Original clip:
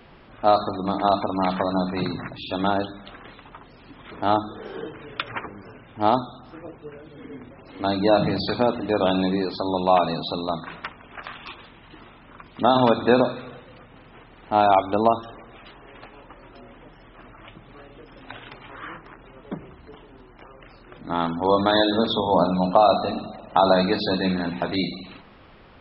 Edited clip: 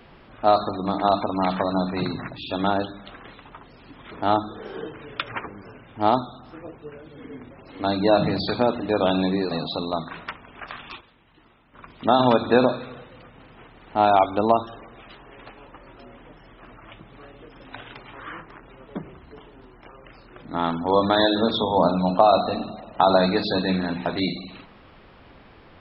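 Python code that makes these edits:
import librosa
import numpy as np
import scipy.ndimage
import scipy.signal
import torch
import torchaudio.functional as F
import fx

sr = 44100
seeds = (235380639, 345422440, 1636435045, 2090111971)

y = fx.edit(x, sr, fx.cut(start_s=9.51, length_s=0.56),
    fx.fade_down_up(start_s=11.38, length_s=1.11, db=-10.5, fade_s=0.19, curve='log'), tone=tone)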